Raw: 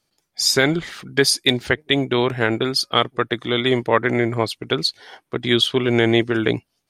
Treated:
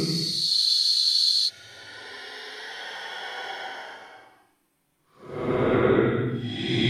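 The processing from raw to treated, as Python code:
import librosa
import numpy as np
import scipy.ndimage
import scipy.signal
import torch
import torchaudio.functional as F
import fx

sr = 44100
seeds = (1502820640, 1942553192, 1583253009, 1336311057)

y = fx.over_compress(x, sr, threshold_db=-23.0, ratio=-0.5)
y = fx.paulstretch(y, sr, seeds[0], factor=11.0, window_s=0.1, from_s=4.82)
y = fx.spec_freeze(y, sr, seeds[1], at_s=0.67, hold_s=0.8)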